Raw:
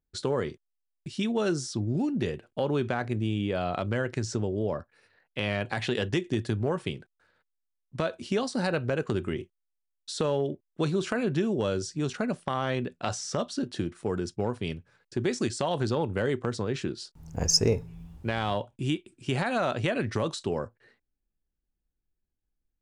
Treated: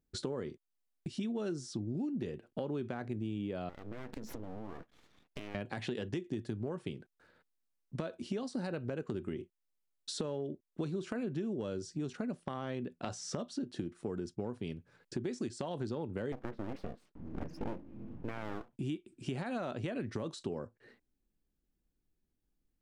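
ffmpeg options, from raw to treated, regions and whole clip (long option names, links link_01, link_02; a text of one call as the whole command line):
ffmpeg -i in.wav -filter_complex "[0:a]asettb=1/sr,asplit=3[link_01][link_02][link_03];[link_01]atrim=end=3.694[link_04];[link_02]atrim=start=3.69:end=5.55,asetpts=PTS-STARTPTS,afade=type=in:duration=0.004:curve=qsin,afade=type=out:start_time=1.856:duration=0.004:curve=qsin,highshelf=frequency=4000:gain=-8,acompressor=threshold=-38dB:ratio=5:attack=3.2:release=140:knee=1:detection=peak,aeval=exprs='abs(val(0))':channel_layout=same[link_05];[link_03]atrim=start=5.546[link_06];[link_04][link_05]acrossfade=duration=0.004:curve1=hsin:curve2=qsin[link_07];[link_07][link_06]acrossfade=duration=0.004:curve1=qsin:curve2=hsin,asettb=1/sr,asplit=3[link_08][link_09][link_10];[link_08]atrim=end=16.324[link_11];[link_09]atrim=start=16.32:end=18.73,asetpts=PTS-STARTPTS,afade=type=in:duration=0.004:curve=qsin,afade=type=out:start_time=2.406:duration=0.004:curve=qsin,lowpass=frequency=2400:width=0.5412,lowpass=frequency=2400:width=1.3066,aeval=exprs='abs(val(0))':channel_layout=same[link_12];[link_10]atrim=start=18.726[link_13];[link_11][link_12]acrossfade=duration=0.004:curve1=hsin:curve2=qsin[link_14];[link_14][link_13]acrossfade=duration=0.004:curve1=qsin:curve2=hsin,equalizer=frequency=260:width_type=o:width=2:gain=8,acompressor=threshold=-40dB:ratio=3" out.wav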